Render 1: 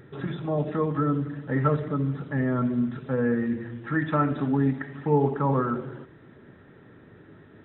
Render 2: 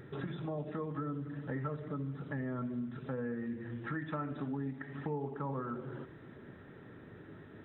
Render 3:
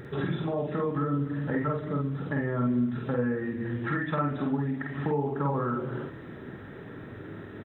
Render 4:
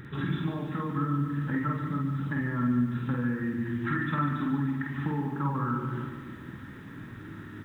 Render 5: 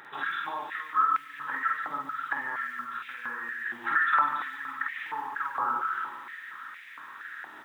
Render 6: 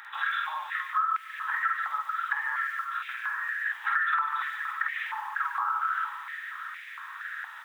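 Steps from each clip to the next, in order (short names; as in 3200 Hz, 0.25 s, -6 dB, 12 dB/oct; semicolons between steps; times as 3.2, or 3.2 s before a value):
compressor 4:1, threshold -36 dBFS, peak gain reduction 16 dB; gain -1.5 dB
doubler 49 ms -2 dB; gain +8 dB
band shelf 550 Hz -12.5 dB 1.2 oct; lo-fi delay 0.146 s, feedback 55%, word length 10-bit, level -8 dB
short-mantissa float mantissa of 6-bit; stepped high-pass 4.3 Hz 780–2200 Hz; gain +1.5 dB
compressor 6:1, threshold -27 dBFS, peak gain reduction 8.5 dB; HPF 1000 Hz 24 dB/oct; gain +4 dB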